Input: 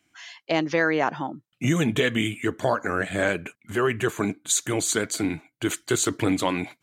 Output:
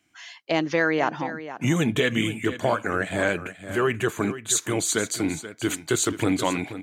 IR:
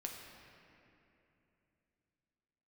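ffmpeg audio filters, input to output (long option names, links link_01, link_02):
-af "aecho=1:1:481:0.224"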